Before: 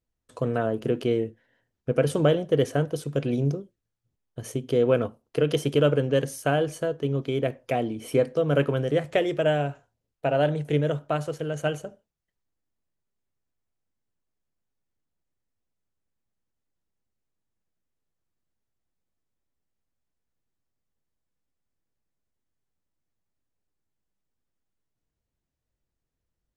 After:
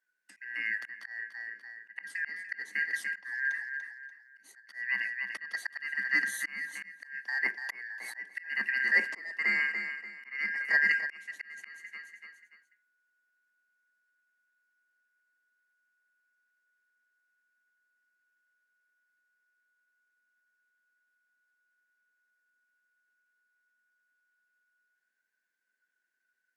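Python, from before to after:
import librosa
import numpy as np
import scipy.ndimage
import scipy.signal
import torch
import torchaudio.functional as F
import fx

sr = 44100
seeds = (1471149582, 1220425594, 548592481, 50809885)

y = fx.band_shuffle(x, sr, order='2143')
y = scipy.signal.sosfilt(scipy.signal.butter(16, 190.0, 'highpass', fs=sr, output='sos'), y)
y = fx.echo_feedback(y, sr, ms=291, feedback_pct=29, wet_db=-12.5)
y = fx.auto_swell(y, sr, attack_ms=701.0)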